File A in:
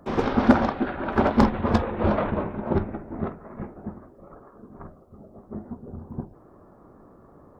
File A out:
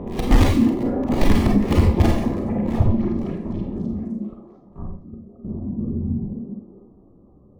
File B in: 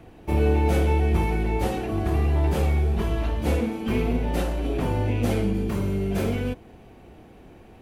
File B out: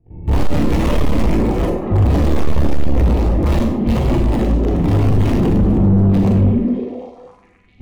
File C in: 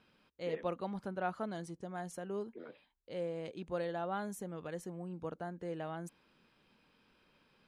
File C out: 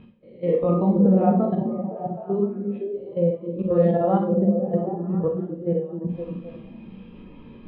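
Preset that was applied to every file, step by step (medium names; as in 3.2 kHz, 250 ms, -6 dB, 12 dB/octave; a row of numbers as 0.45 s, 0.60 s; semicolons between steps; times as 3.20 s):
reverse spectral sustain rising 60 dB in 0.56 s; low-pass 3.9 kHz 24 dB/octave; integer overflow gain 16.5 dB; bass shelf 290 Hz +11.5 dB; reverse; upward compressor, threshold -31 dBFS; reverse; band-stop 1.5 kHz, Q 5.8; de-hum 209.7 Hz, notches 3; level held to a coarse grid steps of 17 dB; on a send: repeats whose band climbs or falls 257 ms, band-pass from 260 Hz, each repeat 0.7 oct, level -0.5 dB; on the sum: Schroeder reverb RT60 0.58 s, combs from 31 ms, DRR 1 dB; overload inside the chain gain 18 dB; spectral contrast expander 1.5:1; peak normalisation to -6 dBFS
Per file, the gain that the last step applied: +12.0 dB, +12.0 dB, +12.5 dB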